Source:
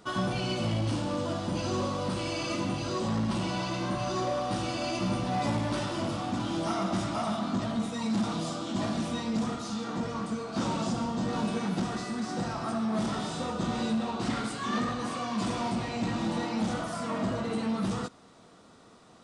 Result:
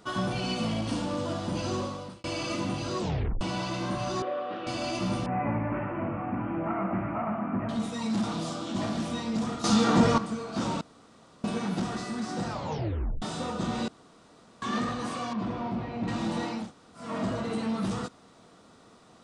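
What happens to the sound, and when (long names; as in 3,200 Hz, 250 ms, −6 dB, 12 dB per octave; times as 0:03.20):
0:00.43–0:01.06: comb filter 4.3 ms, depth 54%
0:01.72–0:02.24: fade out
0:03.00: tape stop 0.41 s
0:04.22–0:04.67: loudspeaker in its box 390–2,800 Hz, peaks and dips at 440 Hz +6 dB, 900 Hz −10 dB, 2,200 Hz −4 dB
0:05.26–0:07.69: Butterworth low-pass 2,500 Hz 72 dB per octave
0:08.30–0:09.10: highs frequency-modulated by the lows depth 0.12 ms
0:09.64–0:10.18: clip gain +12 dB
0:10.81–0:11.44: fill with room tone
0:12.49: tape stop 0.73 s
0:13.88–0:14.62: fill with room tone
0:15.33–0:16.08: head-to-tape spacing loss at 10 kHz 32 dB
0:16.61–0:17.05: fill with room tone, crossfade 0.24 s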